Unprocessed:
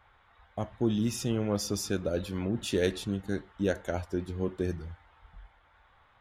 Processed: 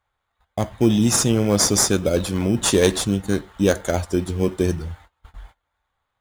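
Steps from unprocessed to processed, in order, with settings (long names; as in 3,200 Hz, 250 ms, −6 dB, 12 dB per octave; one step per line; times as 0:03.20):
noise gate −54 dBFS, range −24 dB
parametric band 8,300 Hz +13.5 dB 1.4 octaves
in parallel at −8 dB: decimation without filtering 16×
on the sum: level +8 dB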